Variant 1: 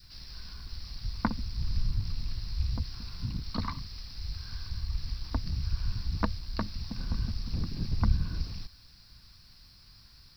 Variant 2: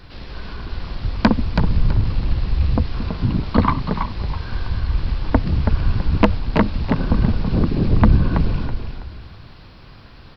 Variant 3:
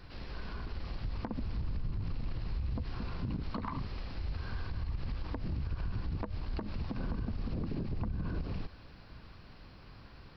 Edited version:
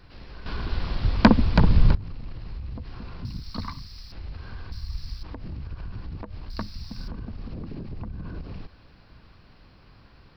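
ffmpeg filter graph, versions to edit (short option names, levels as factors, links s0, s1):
-filter_complex "[0:a]asplit=3[s0][s1][s2];[2:a]asplit=5[s3][s4][s5][s6][s7];[s3]atrim=end=0.462[s8];[1:a]atrim=start=0.458:end=1.952[s9];[s4]atrim=start=1.948:end=3.252[s10];[s0]atrim=start=3.248:end=4.122[s11];[s5]atrim=start=4.118:end=4.722[s12];[s1]atrim=start=4.718:end=5.232[s13];[s6]atrim=start=5.228:end=6.502[s14];[s2]atrim=start=6.498:end=7.082[s15];[s7]atrim=start=7.078[s16];[s8][s9]acrossfade=d=0.004:c1=hsin:c2=hsin[s17];[s17][s10]acrossfade=d=0.004:c1=hsin:c2=hsin[s18];[s18][s11]acrossfade=d=0.004:c1=hsin:c2=hsin[s19];[s19][s12]acrossfade=d=0.004:c1=hsin:c2=hsin[s20];[s20][s13]acrossfade=d=0.004:c1=hsin:c2=hsin[s21];[s21][s14]acrossfade=d=0.004:c1=hsin:c2=hsin[s22];[s22][s15]acrossfade=d=0.004:c1=hsin:c2=hsin[s23];[s23][s16]acrossfade=d=0.004:c1=hsin:c2=hsin"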